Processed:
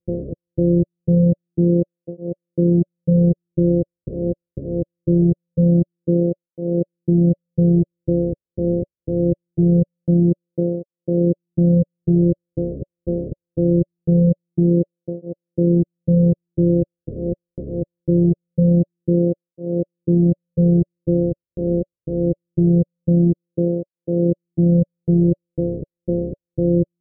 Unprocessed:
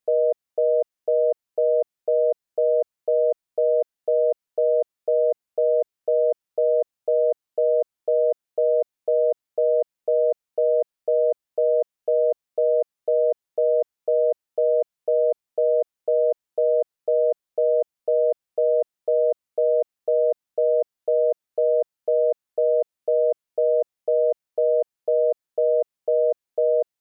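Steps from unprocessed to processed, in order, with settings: sorted samples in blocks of 256 samples; rippled Chebyshev low-pass 580 Hz, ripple 3 dB; cancelling through-zero flanger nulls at 0.23 Hz, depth 6.6 ms; trim +9 dB

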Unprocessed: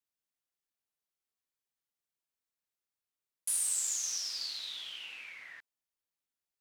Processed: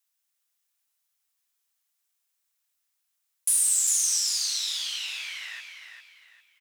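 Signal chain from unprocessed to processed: high-pass 820 Hz 12 dB/octave; treble shelf 4.1 kHz +7.5 dB; band-stop 4.5 kHz, Q 28; in parallel at -1.5 dB: compression 4:1, threshold -36 dBFS, peak gain reduction 12 dB; on the sum: saturation -14.5 dBFS, distortion -23 dB; on a send: feedback delay 401 ms, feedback 32%, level -7 dB; on the sum: trim +2 dB

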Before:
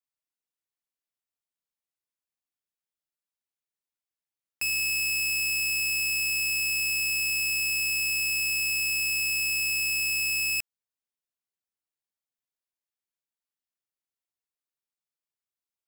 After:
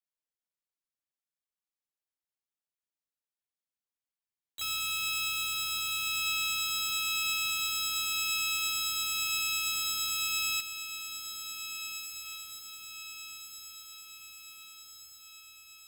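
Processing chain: echo that smears into a reverb 1786 ms, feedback 56%, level -9.5 dB; harmony voices -12 st -6 dB, +4 st -7 dB, +7 st -1 dB; trim -9 dB

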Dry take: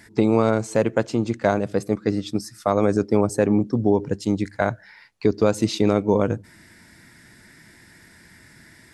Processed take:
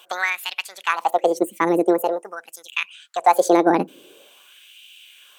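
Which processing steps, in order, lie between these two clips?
time-frequency box 2.74–4.46 s, 330–3000 Hz -8 dB; wide varispeed 1.66×; LFO high-pass sine 0.46 Hz 260–2700 Hz

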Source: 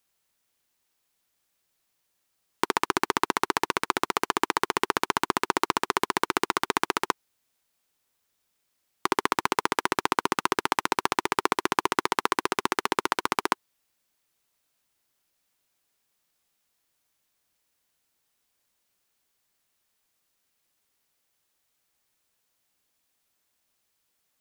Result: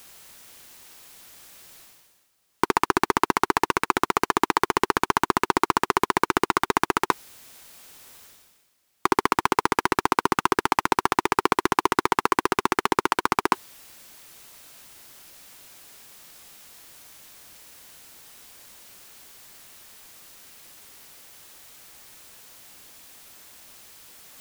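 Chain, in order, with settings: reverse; upward compressor, threshold -36 dBFS; reverse; hard clipper -11.5 dBFS, distortion -9 dB; trim +6 dB

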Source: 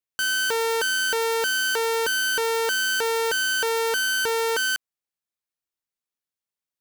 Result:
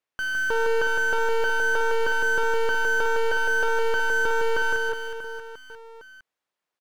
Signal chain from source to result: overdrive pedal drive 21 dB, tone 1 kHz, clips at -18.5 dBFS; on a send: reverse bouncing-ball echo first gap 160 ms, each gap 1.3×, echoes 5

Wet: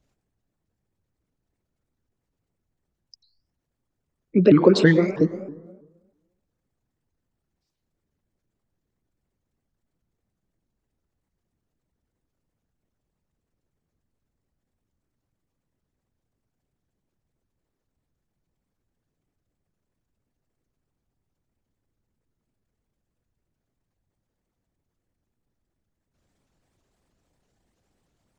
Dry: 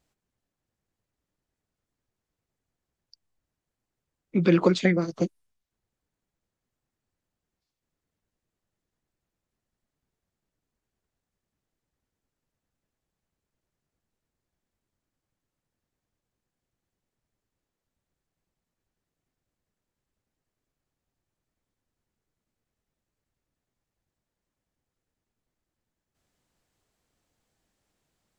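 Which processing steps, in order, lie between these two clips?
resonances exaggerated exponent 1.5; plate-style reverb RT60 1.2 s, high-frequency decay 0.4×, pre-delay 90 ms, DRR 11 dB; vibrato with a chosen wave saw up 3.1 Hz, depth 250 cents; trim +5.5 dB

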